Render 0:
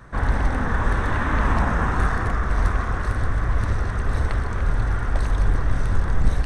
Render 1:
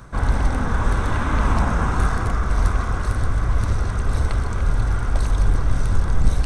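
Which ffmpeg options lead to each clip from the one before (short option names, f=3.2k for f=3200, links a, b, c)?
-af "areverse,acompressor=mode=upward:threshold=-21dB:ratio=2.5,areverse,bass=f=250:g=2,treble=f=4k:g=7,bandreject=f=1.8k:w=6.4"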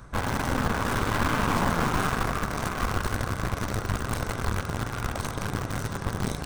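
-filter_complex "[0:a]afftfilt=real='re*lt(hypot(re,im),0.891)':imag='im*lt(hypot(re,im),0.891)':win_size=1024:overlap=0.75,asplit=2[a][b];[b]acrusher=bits=3:mix=0:aa=0.000001,volume=-8dB[c];[a][c]amix=inputs=2:normalize=0,aeval=exprs='(tanh(7.08*val(0)+0.75)-tanh(0.75))/7.08':c=same"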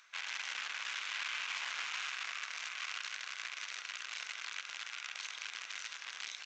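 -af "highpass=f=2.5k:t=q:w=2.3,alimiter=limit=-22.5dB:level=0:latency=1:release=60,aresample=16000,aresample=44100,volume=-4dB"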